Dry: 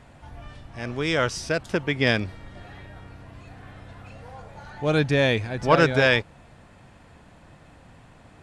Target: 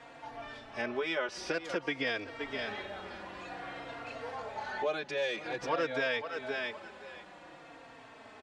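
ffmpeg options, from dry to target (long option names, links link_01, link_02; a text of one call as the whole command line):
ffmpeg -i in.wav -filter_complex "[0:a]asettb=1/sr,asplit=3[link_01][link_02][link_03];[link_01]atrim=end=0.814[link_04];[link_02]atrim=start=0.81:end=1.49,asetpts=PTS-STARTPTS,afade=type=in:duration=0.004:curve=qsin,afade=type=out:start_time=0.676:duration=0.004:curve=qsin,equalizer=frequency=6600:width_type=o:width=1.4:gain=-9[link_05];[link_03]atrim=start=1.486[link_06];[link_04][link_05]acrossfade=duration=0.004:curve1=hsin:curve2=qsin[link_07];[link_07][link_06]acrossfade=duration=0.004:curve1=qsin:curve2=hsin,asplit=2[link_08][link_09];[link_09]alimiter=limit=-16.5dB:level=0:latency=1,volume=-0.5dB[link_10];[link_08][link_10]amix=inputs=2:normalize=0,dynaudnorm=framelen=240:gausssize=17:maxgain=11.5dB,asplit=2[link_11][link_12];[link_12]aecho=0:1:519|1038:0.158|0.0269[link_13];[link_11][link_13]amix=inputs=2:normalize=0,acompressor=threshold=-25dB:ratio=6,asettb=1/sr,asplit=3[link_14][link_15][link_16];[link_14]atrim=end=5.174[link_17];[link_15]atrim=start=5.17:end=5.69,asetpts=PTS-STARTPTS,afade=type=in:duration=0.004:curve=qsin,afade=type=out:start_time=0.516:duration=0.004:curve=qsin,asoftclip=type=hard:threshold=-24.5dB[link_18];[link_16]atrim=start=5.686[link_19];[link_17][link_18]acrossfade=duration=0.004:curve1=hsin:curve2=qsin[link_20];[link_20][link_19]acrossfade=duration=0.004:curve1=qsin:curve2=hsin,acrossover=split=280 6700:gain=0.0708 1 0.158[link_21][link_22][link_23];[link_21][link_22][link_23]amix=inputs=3:normalize=0,asplit=2[link_24][link_25];[link_25]adelay=3.8,afreqshift=-0.52[link_26];[link_24][link_26]amix=inputs=2:normalize=1" out.wav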